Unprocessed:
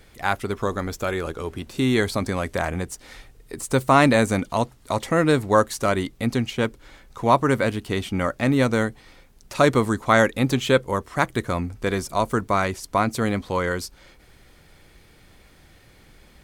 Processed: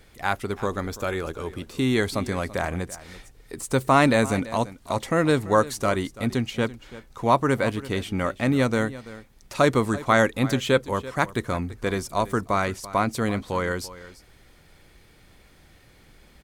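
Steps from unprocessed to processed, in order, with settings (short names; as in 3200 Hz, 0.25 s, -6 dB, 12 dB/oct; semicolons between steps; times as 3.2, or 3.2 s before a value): echo 0.336 s -17 dB; gain -2 dB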